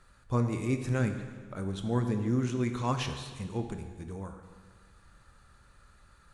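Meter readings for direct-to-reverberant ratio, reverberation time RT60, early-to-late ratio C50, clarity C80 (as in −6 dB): 6.0 dB, 1.6 s, 7.5 dB, 9.0 dB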